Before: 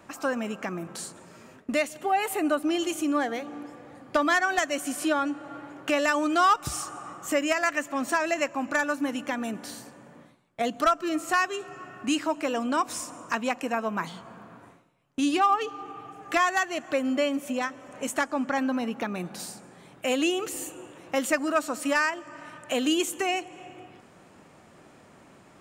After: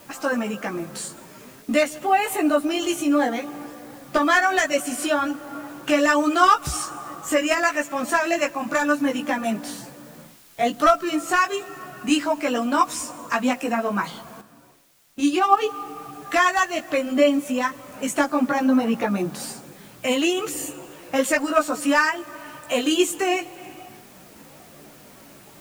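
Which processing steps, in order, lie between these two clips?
spectral magnitudes quantised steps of 15 dB
multi-voice chorus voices 6, 0.44 Hz, delay 17 ms, depth 3.8 ms
bit-depth reduction 10 bits, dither triangular
0:14.41–0:15.57: expander for the loud parts 1.5 to 1, over −36 dBFS
level +8.5 dB

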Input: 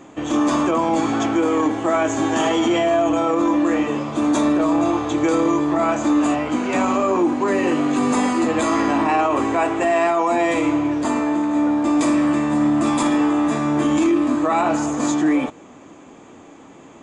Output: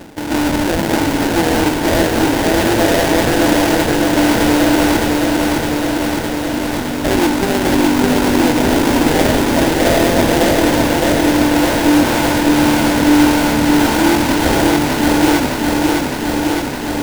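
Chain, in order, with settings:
reversed playback
upward compression, threshold −20 dBFS
reversed playback
time-frequency box erased 0:05.08–0:07.04, 250–1,800 Hz
sample-rate reduction 1,200 Hz, jitter 20%
feedback echo at a low word length 611 ms, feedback 80%, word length 7 bits, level −3 dB
level +2.5 dB

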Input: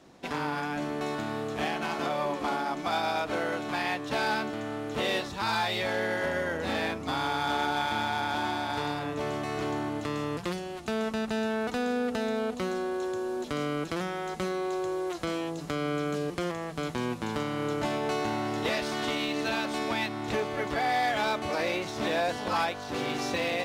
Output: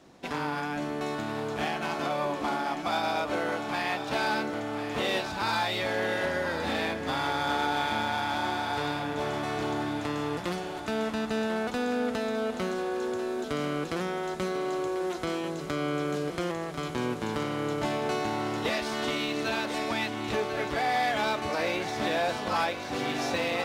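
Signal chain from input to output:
feedback echo with a high-pass in the loop 1,043 ms, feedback 62%, high-pass 210 Hz, level −10 dB

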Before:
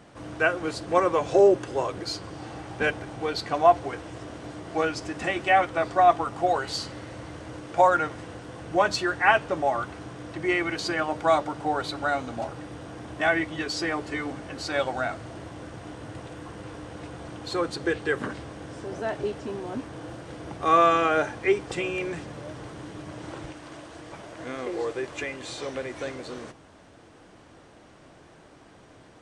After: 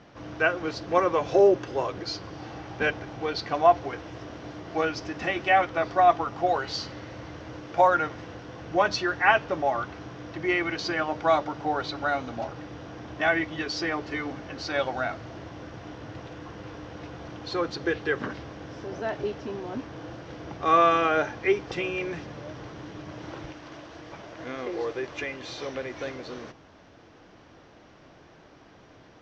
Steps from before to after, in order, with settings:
elliptic low-pass filter 5,900 Hz, stop band 60 dB

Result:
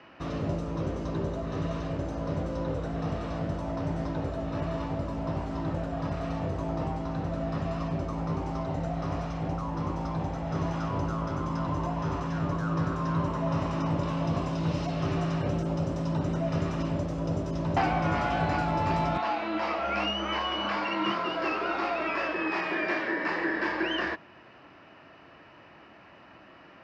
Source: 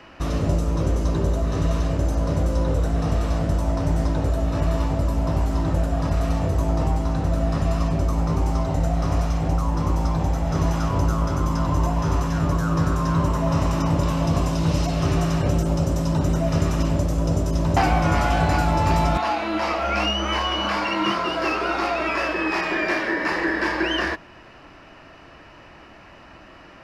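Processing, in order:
band-pass filter 110–4,000 Hz
level −6 dB

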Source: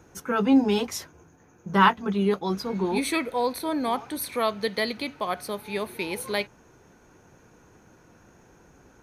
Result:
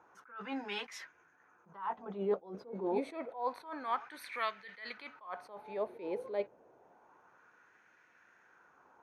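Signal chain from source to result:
auto-filter band-pass sine 0.28 Hz 510–1,900 Hz
level that may rise only so fast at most 140 dB per second
level +1 dB

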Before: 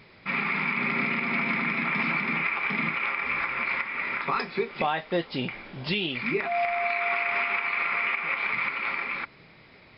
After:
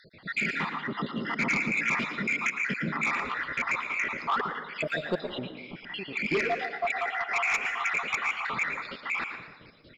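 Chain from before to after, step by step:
time-frequency cells dropped at random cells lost 72%
0:05.32–0:06.16: downward compressor 2.5 to 1, threshold −42 dBFS, peak gain reduction 10 dB
0:06.85–0:07.47: high-pass filter 300 Hz
echo with shifted repeats 114 ms, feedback 30%, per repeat +65 Hz, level −10 dB
sine wavefolder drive 6 dB, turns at −15.5 dBFS
convolution reverb RT60 1.0 s, pre-delay 98 ms, DRR 9.5 dB
level −6 dB

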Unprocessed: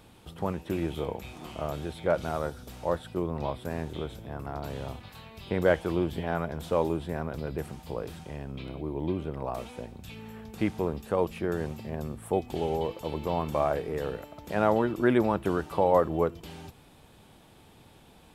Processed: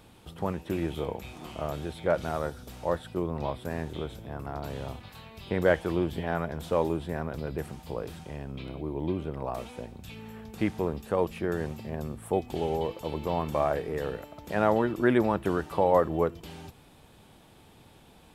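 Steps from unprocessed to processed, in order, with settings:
dynamic equaliser 1,800 Hz, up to +4 dB, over −53 dBFS, Q 6.7

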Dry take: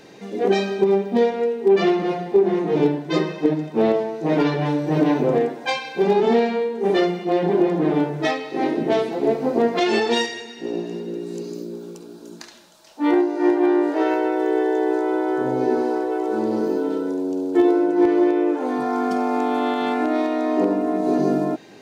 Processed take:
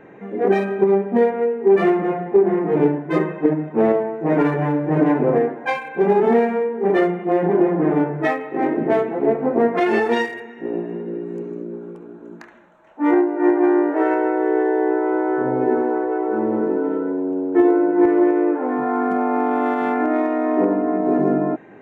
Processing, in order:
adaptive Wiener filter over 9 samples
high shelf with overshoot 2,700 Hz −11 dB, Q 1.5
level +1.5 dB

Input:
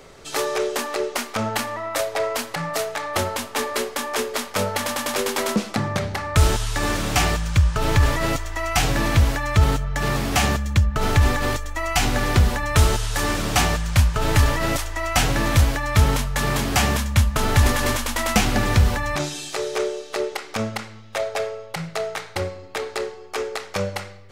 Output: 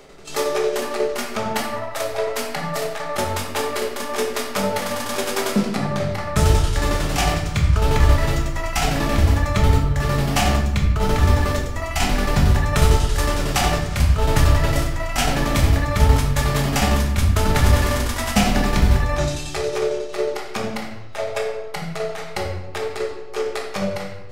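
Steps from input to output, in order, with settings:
shaped tremolo saw down 11 Hz, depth 75%
convolution reverb RT60 0.90 s, pre-delay 5 ms, DRR −1 dB

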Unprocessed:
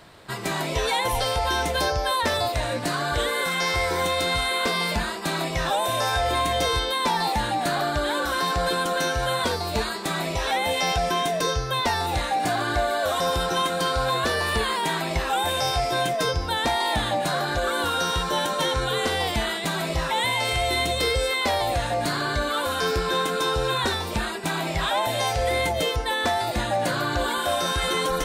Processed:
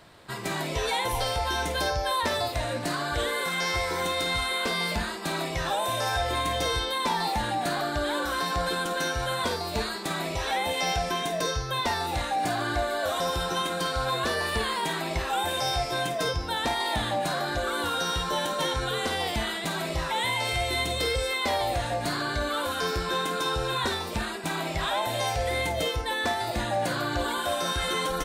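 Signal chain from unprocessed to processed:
multi-tap delay 51/54 ms −10.5/−16.5 dB
level −4 dB

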